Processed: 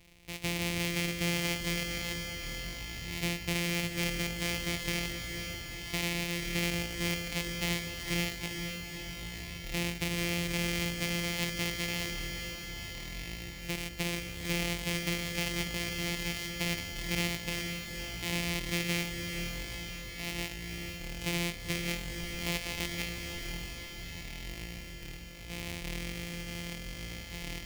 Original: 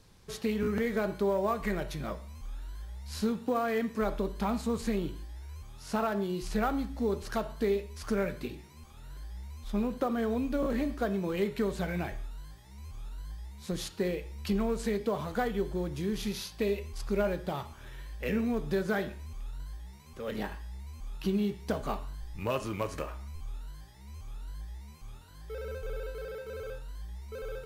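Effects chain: sorted samples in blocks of 256 samples; resonant high shelf 1.8 kHz +7.5 dB, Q 3; in parallel at -1 dB: peak limiter -19 dBFS, peak gain reduction 10.5 dB; on the sum: echo that smears into a reverb 479 ms, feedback 67%, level -6 dB; trim -8.5 dB

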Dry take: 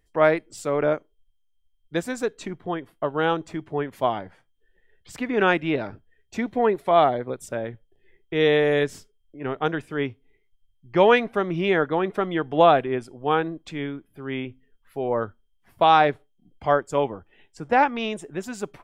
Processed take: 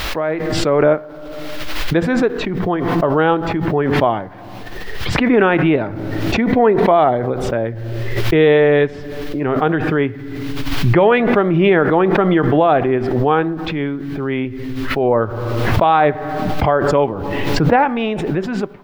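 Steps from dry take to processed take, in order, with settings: peak limiter -11.5 dBFS, peak gain reduction 8.5 dB; level rider gain up to 8.5 dB; added noise blue -48 dBFS; distance through air 340 m; reverberation RT60 1.0 s, pre-delay 4 ms, DRR 16.5 dB; swell ahead of each attack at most 26 dB/s; trim +2 dB

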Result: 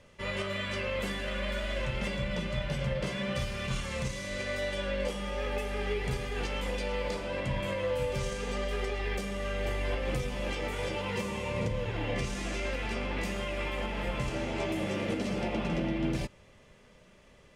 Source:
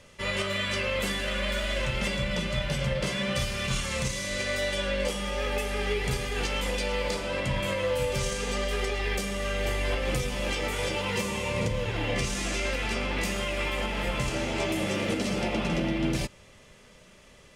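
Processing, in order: treble shelf 3.2 kHz -8.5 dB; band-stop 1.3 kHz, Q 30; trim -3 dB

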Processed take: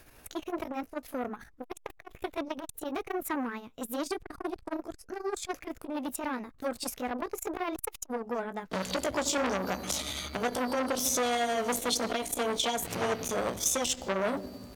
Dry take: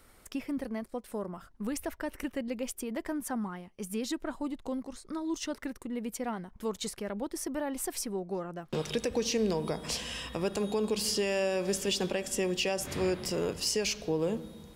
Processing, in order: rotating-head pitch shifter +3.5 st; transformer saturation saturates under 1.6 kHz; trim +5.5 dB

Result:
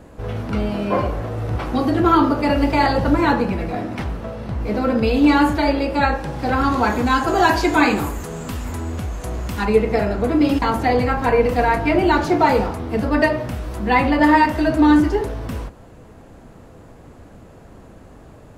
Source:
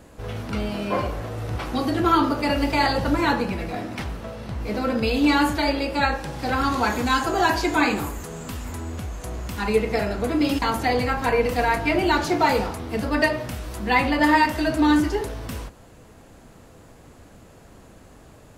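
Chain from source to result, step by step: treble shelf 2.2 kHz -9.5 dB, from 7.28 s -4 dB, from 9.65 s -10 dB; trim +5.5 dB

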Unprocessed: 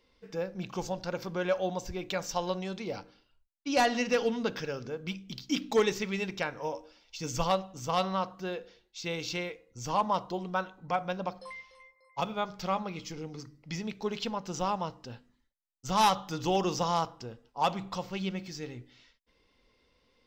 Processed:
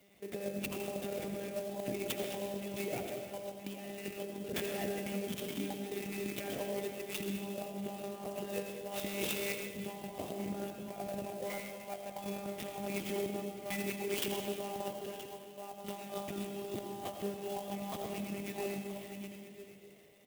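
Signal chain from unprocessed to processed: monotone LPC vocoder at 8 kHz 200 Hz; 13.35–16.17 s: bass shelf 340 Hz -7 dB; delay 974 ms -18 dB; compressor with a negative ratio -39 dBFS, ratio -1; high-pass 150 Hz 12 dB/octave; high-order bell 1.2 kHz -12.5 dB 1 oct; algorithmic reverb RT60 1.9 s, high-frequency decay 0.75×, pre-delay 45 ms, DRR 3.5 dB; sampling jitter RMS 0.051 ms; trim +1.5 dB

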